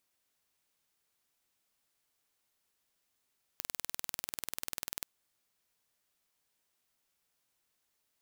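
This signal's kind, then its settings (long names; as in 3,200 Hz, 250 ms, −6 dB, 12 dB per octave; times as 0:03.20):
impulse train 20.3 per second, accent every 0, −9 dBFS 1.46 s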